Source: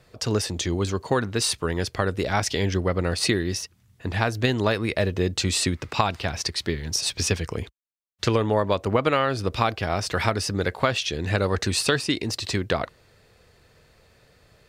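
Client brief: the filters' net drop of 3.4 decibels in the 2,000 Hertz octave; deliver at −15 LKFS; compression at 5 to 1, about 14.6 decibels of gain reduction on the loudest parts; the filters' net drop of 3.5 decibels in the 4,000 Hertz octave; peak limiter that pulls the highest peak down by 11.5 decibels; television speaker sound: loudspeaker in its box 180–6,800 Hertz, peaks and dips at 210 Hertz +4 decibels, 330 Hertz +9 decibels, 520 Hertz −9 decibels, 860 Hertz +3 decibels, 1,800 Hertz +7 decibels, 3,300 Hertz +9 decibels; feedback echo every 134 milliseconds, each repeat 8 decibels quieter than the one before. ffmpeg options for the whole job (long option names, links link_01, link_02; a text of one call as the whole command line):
ffmpeg -i in.wav -af "equalizer=frequency=2000:width_type=o:gain=-8.5,equalizer=frequency=4000:width_type=o:gain=-7,acompressor=threshold=-35dB:ratio=5,alimiter=level_in=7dB:limit=-24dB:level=0:latency=1,volume=-7dB,highpass=frequency=180:width=0.5412,highpass=frequency=180:width=1.3066,equalizer=frequency=210:width_type=q:width=4:gain=4,equalizer=frequency=330:width_type=q:width=4:gain=9,equalizer=frequency=520:width_type=q:width=4:gain=-9,equalizer=frequency=860:width_type=q:width=4:gain=3,equalizer=frequency=1800:width_type=q:width=4:gain=7,equalizer=frequency=3300:width_type=q:width=4:gain=9,lowpass=frequency=6800:width=0.5412,lowpass=frequency=6800:width=1.3066,aecho=1:1:134|268|402|536|670:0.398|0.159|0.0637|0.0255|0.0102,volume=25dB" out.wav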